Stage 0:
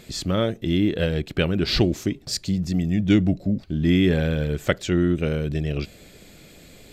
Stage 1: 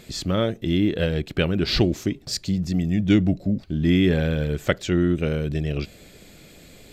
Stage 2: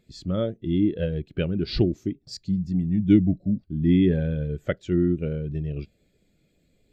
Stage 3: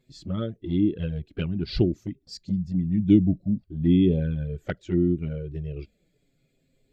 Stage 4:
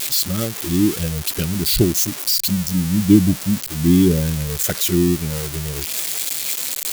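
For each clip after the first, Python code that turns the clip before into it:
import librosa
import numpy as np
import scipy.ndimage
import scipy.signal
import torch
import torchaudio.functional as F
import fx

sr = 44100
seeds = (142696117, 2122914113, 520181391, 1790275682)

y1 = fx.dynamic_eq(x, sr, hz=9600.0, q=1.5, threshold_db=-50.0, ratio=4.0, max_db=-3)
y2 = fx.spectral_expand(y1, sr, expansion=1.5)
y3 = fx.env_flanger(y2, sr, rest_ms=7.8, full_db=-17.5)
y4 = y3 + 0.5 * 10.0 ** (-16.0 / 20.0) * np.diff(np.sign(y3), prepend=np.sign(y3[:1]))
y4 = y4 * 10.0 ** (5.5 / 20.0)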